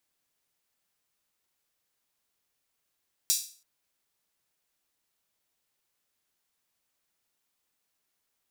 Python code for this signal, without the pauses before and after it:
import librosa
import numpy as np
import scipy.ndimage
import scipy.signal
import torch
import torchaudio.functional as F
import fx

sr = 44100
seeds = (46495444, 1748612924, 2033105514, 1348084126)

y = fx.drum_hat_open(sr, length_s=0.33, from_hz=5100.0, decay_s=0.41)